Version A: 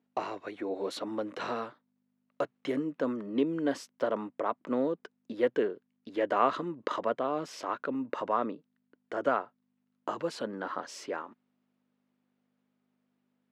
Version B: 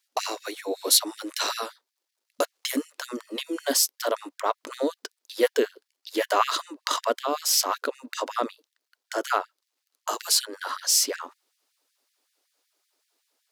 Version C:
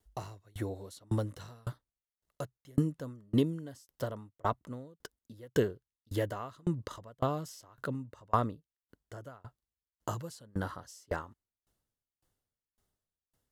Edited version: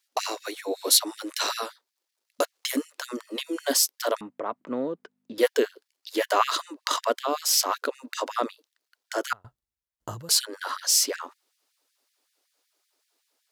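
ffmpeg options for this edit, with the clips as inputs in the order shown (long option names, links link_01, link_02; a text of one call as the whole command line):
ffmpeg -i take0.wav -i take1.wav -i take2.wav -filter_complex "[1:a]asplit=3[link_01][link_02][link_03];[link_01]atrim=end=4.212[link_04];[0:a]atrim=start=4.208:end=5.382[link_05];[link_02]atrim=start=5.378:end=9.332[link_06];[2:a]atrim=start=9.328:end=10.292[link_07];[link_03]atrim=start=10.288[link_08];[link_04][link_05]acrossfade=duration=0.004:curve1=hsin:curve2=hsin[link_09];[link_09][link_06]acrossfade=duration=0.004:curve1=hsin:curve2=hsin[link_10];[link_10][link_07]acrossfade=duration=0.004:curve1=hsin:curve2=hsin[link_11];[link_11][link_08]acrossfade=duration=0.004:curve1=hsin:curve2=hsin" out.wav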